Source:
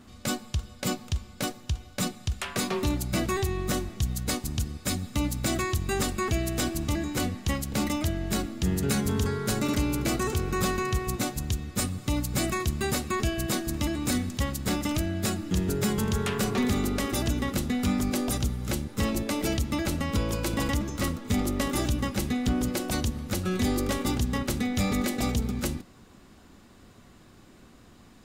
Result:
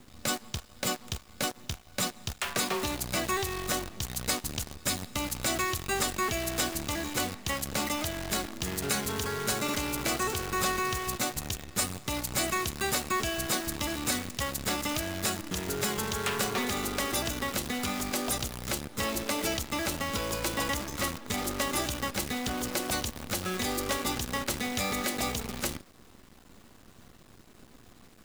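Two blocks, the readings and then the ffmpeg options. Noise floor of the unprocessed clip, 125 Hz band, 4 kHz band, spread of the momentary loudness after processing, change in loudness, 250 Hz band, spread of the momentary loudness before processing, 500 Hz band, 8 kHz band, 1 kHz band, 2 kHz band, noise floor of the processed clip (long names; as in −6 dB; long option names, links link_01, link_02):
−53 dBFS, −9.5 dB, +2.0 dB, 4 LU, −2.0 dB, −7.5 dB, 5 LU, −2.5 dB, +2.0 dB, +1.5 dB, +2.0 dB, −55 dBFS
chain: -filter_complex "[0:a]acrossover=split=470|1100[link_01][link_02][link_03];[link_01]acompressor=threshold=-38dB:ratio=6[link_04];[link_04][link_02][link_03]amix=inputs=3:normalize=0,acrusher=bits=7:dc=4:mix=0:aa=0.000001,volume=1.5dB"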